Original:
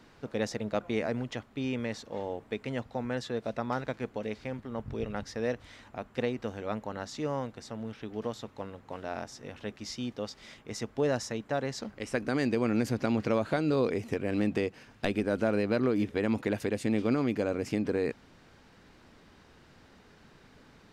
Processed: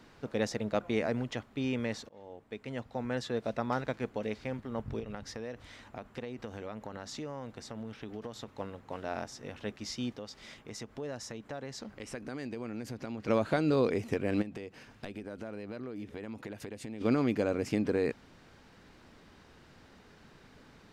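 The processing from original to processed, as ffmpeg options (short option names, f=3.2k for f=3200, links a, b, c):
-filter_complex "[0:a]asettb=1/sr,asplit=3[a][b][c];[a]atrim=end=4.994[d];[b]atrim=start=4.99:end=8.49,asetpts=PTS-STARTPTS,afade=t=in:d=0.004:c=qsin,afade=t=out:st=3.496:d=0.004:c=qsin,acompressor=threshold=-36dB:ratio=6:attack=3.2:release=140:knee=1:detection=peak[e];[c]atrim=start=8.486[f];[d][e]acrossfade=d=0.004:c1=hsin:c2=qsin[g];[g][f]acrossfade=d=0.004:c1=qsin:c2=hsin,asettb=1/sr,asplit=3[h][i][j];[h]atrim=end=10.164[k];[i]atrim=start=10.16:end=13.28,asetpts=PTS-STARTPTS,afade=t=in:d=0.004:c=qsin,afade=t=out:st=3.116:d=0.004:c=qsin,acompressor=threshold=-41dB:ratio=2.5:attack=3.2:release=140:knee=1:detection=peak[l];[j]atrim=start=13.276[m];[k][l]acrossfade=d=0.004:c1=hsin:c2=qsin[n];[n][m]acrossfade=d=0.004:c1=qsin:c2=hsin,asplit=3[o][p][q];[o]afade=t=out:st=14.41:d=0.02[r];[p]acompressor=threshold=-40dB:ratio=4:attack=3.2:release=140:knee=1:detection=peak,afade=t=in:st=14.41:d=0.02,afade=t=out:st=17:d=0.02[s];[q]afade=t=in:st=17:d=0.02[t];[r][s][t]amix=inputs=3:normalize=0,asplit=2[u][v];[u]atrim=end=2.09,asetpts=PTS-STARTPTS,afade=t=out:st=2.086:d=0.004:c=hsin:silence=0.0749894[w];[v]atrim=start=2.09,asetpts=PTS-STARTPTS,afade=t=in:d=1.16:silence=0.0749894[x];[w][x]concat=n=2:v=0:a=1"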